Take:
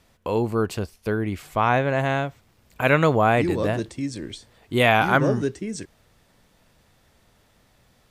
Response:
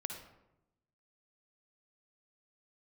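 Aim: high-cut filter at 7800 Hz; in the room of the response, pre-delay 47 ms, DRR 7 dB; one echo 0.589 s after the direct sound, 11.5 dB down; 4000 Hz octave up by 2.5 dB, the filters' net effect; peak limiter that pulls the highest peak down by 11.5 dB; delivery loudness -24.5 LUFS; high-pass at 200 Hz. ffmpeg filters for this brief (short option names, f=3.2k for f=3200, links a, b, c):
-filter_complex "[0:a]highpass=200,lowpass=7.8k,equalizer=f=4k:t=o:g=3.5,alimiter=limit=-13dB:level=0:latency=1,aecho=1:1:589:0.266,asplit=2[a][b];[1:a]atrim=start_sample=2205,adelay=47[c];[b][c]afir=irnorm=-1:irlink=0,volume=-6.5dB[d];[a][d]amix=inputs=2:normalize=0,volume=2dB"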